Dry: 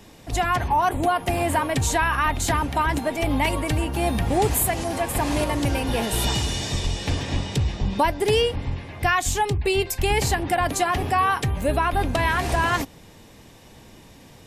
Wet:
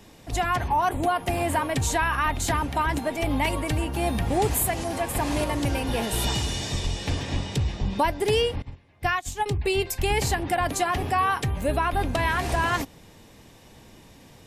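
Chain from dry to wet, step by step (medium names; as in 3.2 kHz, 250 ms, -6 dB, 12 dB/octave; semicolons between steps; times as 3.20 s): 8.62–9.46 s: upward expansion 2.5:1, over -31 dBFS; trim -2.5 dB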